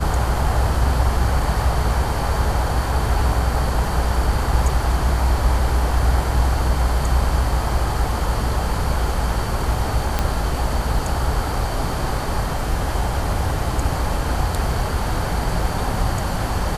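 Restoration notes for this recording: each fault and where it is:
0:10.19: click −5 dBFS

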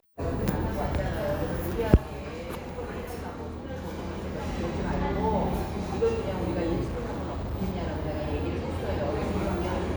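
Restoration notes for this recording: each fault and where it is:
0:06.83–0:07.55: clipping −29 dBFS

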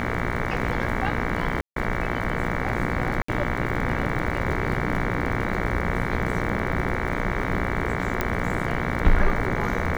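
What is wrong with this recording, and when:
mains buzz 60 Hz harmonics 38 −29 dBFS
surface crackle 48 per second −31 dBFS
0:01.61–0:01.76: drop-out 153 ms
0:03.22–0:03.28: drop-out 64 ms
0:08.21: click −9 dBFS

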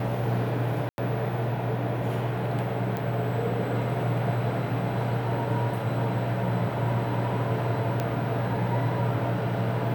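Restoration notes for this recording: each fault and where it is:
0:00.89–0:00.98: drop-out 91 ms
0:02.97: click
0:08.00: click −14 dBFS

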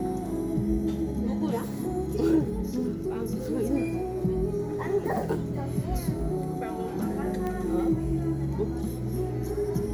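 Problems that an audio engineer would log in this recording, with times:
0:07.47: click −21 dBFS

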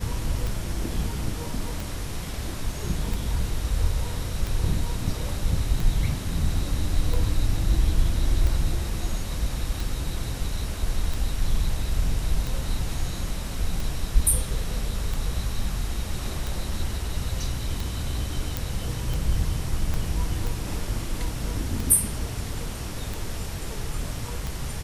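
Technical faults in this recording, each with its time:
scratch tick 45 rpm
0:18.57: click
0:19.94: click −15 dBFS

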